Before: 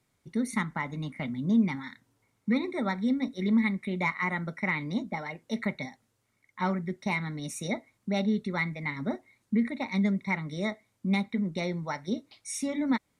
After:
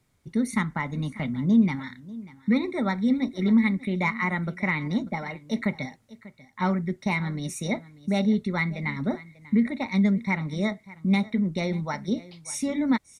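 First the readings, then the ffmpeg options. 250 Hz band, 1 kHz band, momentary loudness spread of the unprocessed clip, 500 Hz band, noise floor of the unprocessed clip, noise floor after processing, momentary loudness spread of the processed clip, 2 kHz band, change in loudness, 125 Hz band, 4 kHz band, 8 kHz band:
+4.5 dB, +2.5 dB, 9 LU, +3.0 dB, −75 dBFS, −60 dBFS, 9 LU, +2.5 dB, +4.0 dB, +5.5 dB, +2.5 dB, +2.5 dB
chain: -af "lowshelf=frequency=120:gain=9,aecho=1:1:592:0.112,volume=2.5dB"

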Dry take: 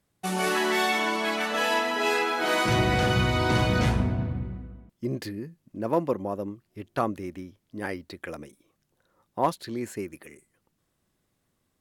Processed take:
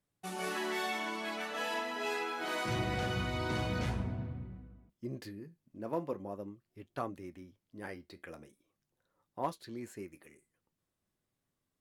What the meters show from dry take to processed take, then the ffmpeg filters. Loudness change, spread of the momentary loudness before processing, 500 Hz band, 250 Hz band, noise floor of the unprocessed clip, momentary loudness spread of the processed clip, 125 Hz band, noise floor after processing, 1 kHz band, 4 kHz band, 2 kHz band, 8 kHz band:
−11.0 dB, 16 LU, −11.0 dB, −11.0 dB, −75 dBFS, 16 LU, −11.0 dB, below −85 dBFS, −11.0 dB, −11.5 dB, −11.0 dB, −11.5 dB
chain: -af "flanger=delay=6.8:depth=5.9:regen=-64:speed=0.43:shape=sinusoidal,volume=-7dB"

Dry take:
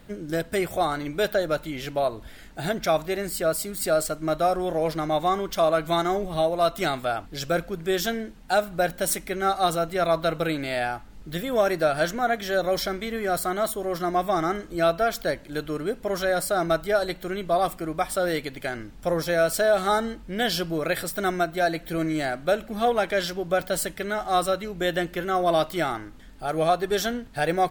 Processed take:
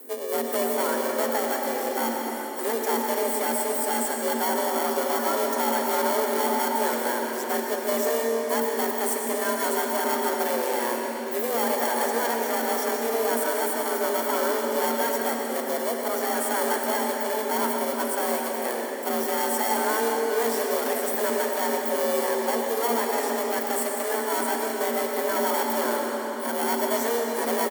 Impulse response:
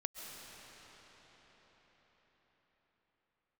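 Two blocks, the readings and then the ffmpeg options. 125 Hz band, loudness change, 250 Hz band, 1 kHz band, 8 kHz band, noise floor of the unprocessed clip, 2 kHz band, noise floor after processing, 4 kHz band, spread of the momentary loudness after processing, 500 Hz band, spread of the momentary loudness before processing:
below −15 dB, +0.5 dB, −1.0 dB, +0.5 dB, +5.0 dB, −45 dBFS, −0.5 dB, −30 dBFS, −2.0 dB, 3 LU, −1.0 dB, 7 LU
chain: -filter_complex "[0:a]aeval=exprs='0.299*(cos(1*acos(clip(val(0)/0.299,-1,1)))-cos(1*PI/2))+0.0668*(cos(5*acos(clip(val(0)/0.299,-1,1)))-cos(5*PI/2))+0.0596*(cos(8*acos(clip(val(0)/0.299,-1,1)))-cos(8*PI/2))':channel_layout=same,acrossover=split=5300[link_01][link_02];[link_02]acompressor=threshold=-44dB:ratio=4:attack=1:release=60[link_03];[link_01][link_03]amix=inputs=2:normalize=0,firequalizer=gain_entry='entry(130,0);entry(210,5);entry(530,-3);entry(950,4);entry(3200,-17);entry(7700,9)':delay=0.05:min_phase=1,asplit=2[link_04][link_05];[link_05]acrusher=samples=37:mix=1:aa=0.000001,volume=-3.5dB[link_06];[link_04][link_06]amix=inputs=2:normalize=0,afreqshift=230,aemphasis=mode=production:type=50fm[link_07];[1:a]atrim=start_sample=2205,asetrate=61740,aresample=44100[link_08];[link_07][link_08]afir=irnorm=-1:irlink=0,volume=-5.5dB"

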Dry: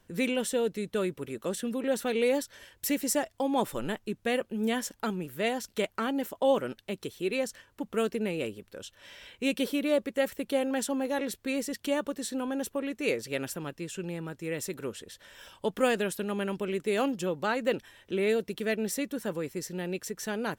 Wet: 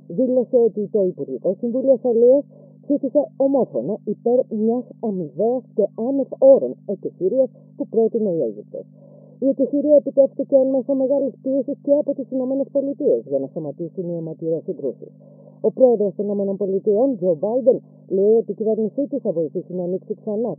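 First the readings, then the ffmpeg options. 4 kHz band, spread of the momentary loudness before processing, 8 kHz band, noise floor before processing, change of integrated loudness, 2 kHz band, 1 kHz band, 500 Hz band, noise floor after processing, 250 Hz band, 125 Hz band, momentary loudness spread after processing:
below −40 dB, 10 LU, below −40 dB, −66 dBFS, +11.0 dB, below −40 dB, +1.0 dB, +13.5 dB, −47 dBFS, +9.5 dB, +8.5 dB, 11 LU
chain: -af "lowshelf=frequency=750:width_type=q:width=3:gain=9,aeval=exprs='val(0)+0.0158*(sin(2*PI*50*n/s)+sin(2*PI*2*50*n/s)/2+sin(2*PI*3*50*n/s)/3+sin(2*PI*4*50*n/s)/4+sin(2*PI*5*50*n/s)/5)':channel_layout=same,afftfilt=real='re*between(b*sr/4096,130,1100)':imag='im*between(b*sr/4096,130,1100)':win_size=4096:overlap=0.75,volume=-1dB"

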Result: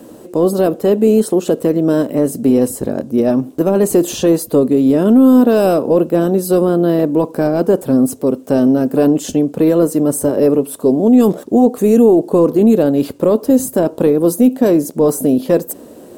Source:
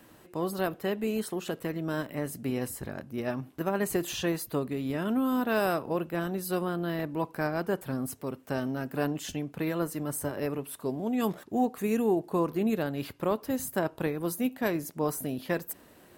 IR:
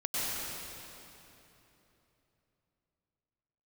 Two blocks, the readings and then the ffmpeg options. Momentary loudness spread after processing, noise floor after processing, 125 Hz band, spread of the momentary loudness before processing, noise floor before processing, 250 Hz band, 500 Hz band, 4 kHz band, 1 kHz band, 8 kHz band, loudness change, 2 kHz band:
6 LU, −37 dBFS, +13.5 dB, 7 LU, −56 dBFS, +19.0 dB, +19.0 dB, +8.5 dB, +10.5 dB, +14.0 dB, +18.0 dB, +4.0 dB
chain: -af "apsyclip=25dB,acrusher=bits=6:mix=0:aa=0.5,equalizer=frequency=250:width_type=o:width=1:gain=10,equalizer=frequency=500:width_type=o:width=1:gain=12,equalizer=frequency=2000:width_type=o:width=1:gain=-7,equalizer=frequency=8000:width_type=o:width=1:gain=6,volume=-15.5dB"

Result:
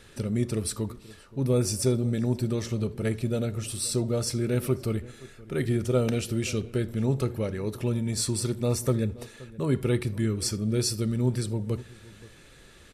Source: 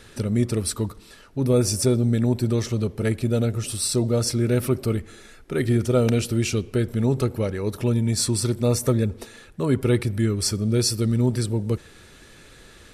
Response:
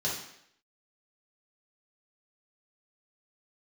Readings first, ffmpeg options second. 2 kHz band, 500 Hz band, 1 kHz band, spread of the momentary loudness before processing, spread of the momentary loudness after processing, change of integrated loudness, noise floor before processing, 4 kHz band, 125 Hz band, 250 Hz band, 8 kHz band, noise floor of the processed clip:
−4.5 dB, −5.0 dB, −5.5 dB, 7 LU, 8 LU, −5.0 dB, −49 dBFS, −5.5 dB, −5.0 dB, −5.0 dB, −5.0 dB, −52 dBFS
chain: -filter_complex "[0:a]asplit=2[link_01][link_02];[link_02]adelay=524.8,volume=-20dB,highshelf=frequency=4000:gain=-11.8[link_03];[link_01][link_03]amix=inputs=2:normalize=0,asplit=2[link_04][link_05];[1:a]atrim=start_sample=2205,atrim=end_sample=3969[link_06];[link_05][link_06]afir=irnorm=-1:irlink=0,volume=-20dB[link_07];[link_04][link_07]amix=inputs=2:normalize=0,volume=-4.5dB"

